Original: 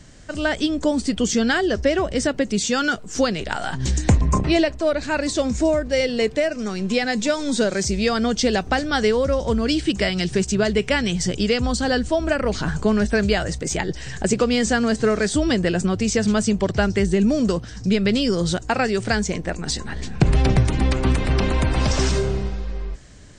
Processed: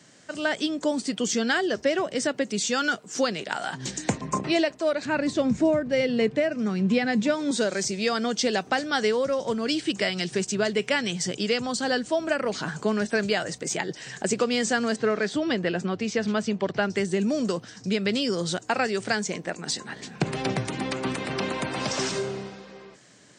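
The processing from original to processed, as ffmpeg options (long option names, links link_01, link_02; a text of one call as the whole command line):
ffmpeg -i in.wav -filter_complex "[0:a]asettb=1/sr,asplit=3[link_01][link_02][link_03];[link_01]atrim=end=5.054[link_04];[link_02]atrim=start=5.05:end=7.51,asetpts=PTS-STARTPTS,afade=type=in:duration=0.004:curve=qsin,afade=type=out:start_time=2.456:duration=0.004:curve=qsin,bass=frequency=250:gain=14,treble=frequency=4000:gain=-10[link_05];[link_03]atrim=start=7.506[link_06];[link_04][link_05]acrossfade=duration=0.004:curve1=hsin:curve2=qsin[link_07];[link_07][link_06]acrossfade=duration=0.004:curve1=qsin:curve2=hsin,asettb=1/sr,asplit=3[link_08][link_09][link_10];[link_08]atrim=end=14.964[link_11];[link_09]atrim=start=14.96:end=16.9,asetpts=PTS-STARTPTS,afade=type=in:duration=0.004:curve=qsin,afade=type=out:start_time=1.936:duration=0.004:curve=qsin,lowpass=4000[link_12];[link_10]atrim=start=16.896[link_13];[link_11][link_12]acrossfade=duration=0.004:curve1=hsin:curve2=qsin[link_14];[link_14][link_13]acrossfade=duration=0.004:curve1=qsin:curve2=hsin,highpass=frequency=130:width=0.5412,highpass=frequency=130:width=1.3066,lowshelf=frequency=240:gain=-8,volume=-3dB" out.wav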